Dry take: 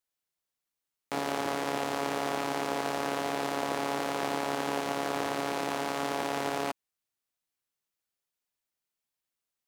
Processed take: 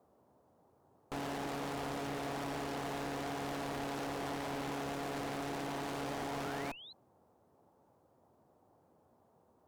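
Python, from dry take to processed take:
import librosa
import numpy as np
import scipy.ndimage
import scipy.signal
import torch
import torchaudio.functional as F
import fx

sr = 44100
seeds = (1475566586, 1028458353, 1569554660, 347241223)

y = fx.dmg_noise_band(x, sr, seeds[0], low_hz=74.0, high_hz=890.0, level_db=-68.0)
y = fx.tube_stage(y, sr, drive_db=40.0, bias=0.8)
y = fx.spec_paint(y, sr, seeds[1], shape='rise', start_s=5.83, length_s=1.1, low_hz=290.0, high_hz=4200.0, level_db=-56.0)
y = y * librosa.db_to_amplitude(4.0)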